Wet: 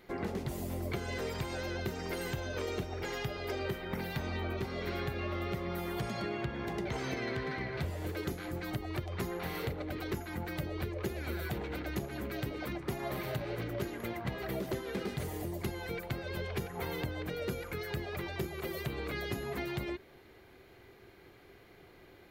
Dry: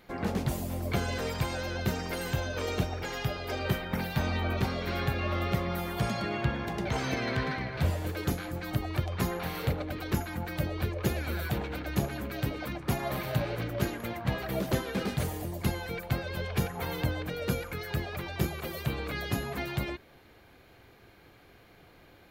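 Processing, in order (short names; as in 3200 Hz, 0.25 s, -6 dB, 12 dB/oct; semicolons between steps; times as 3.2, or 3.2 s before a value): small resonant body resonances 380/2000 Hz, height 9 dB, ringing for 45 ms; compressor, threshold -30 dBFS, peak gain reduction 10 dB; gain -2.5 dB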